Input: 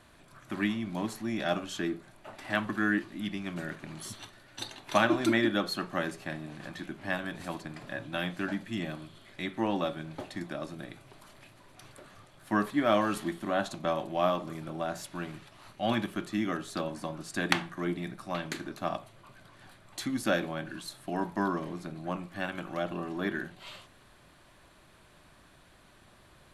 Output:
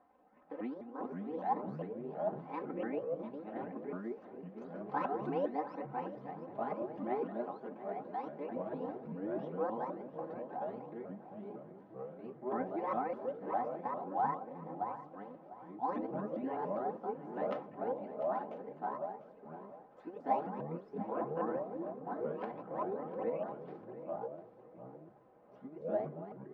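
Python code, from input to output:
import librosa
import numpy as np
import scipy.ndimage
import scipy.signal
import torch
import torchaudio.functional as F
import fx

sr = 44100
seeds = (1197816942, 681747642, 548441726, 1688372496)

p1 = fx.pitch_ramps(x, sr, semitones=10.0, every_ms=202)
p2 = scipy.signal.sosfilt(scipy.signal.cheby1(3, 1.0, 800.0, 'lowpass', fs=sr, output='sos'), p1)
p3 = np.diff(p2, prepend=0.0)
p4 = p3 + 0.8 * np.pad(p3, (int(3.9 * sr / 1000.0), 0))[:len(p3)]
p5 = fx.echo_pitch(p4, sr, ms=358, semitones=-4, count=2, db_per_echo=-3.0)
p6 = p5 + fx.echo_feedback(p5, sr, ms=698, feedback_pct=31, wet_db=-14.5, dry=0)
y = p6 * 10.0 ** (16.0 / 20.0)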